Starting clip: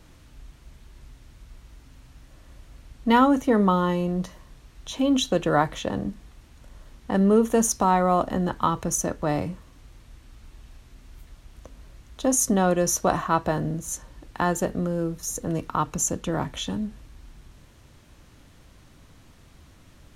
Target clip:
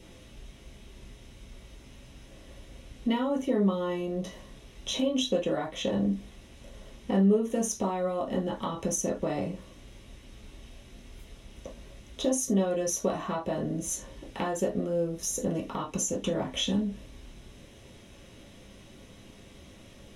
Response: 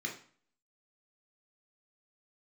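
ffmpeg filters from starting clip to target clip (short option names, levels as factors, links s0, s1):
-filter_complex "[0:a]acompressor=threshold=0.0316:ratio=6[s0];[1:a]atrim=start_sample=2205,atrim=end_sample=6174,asetrate=70560,aresample=44100[s1];[s0][s1]afir=irnorm=-1:irlink=0,volume=1.88"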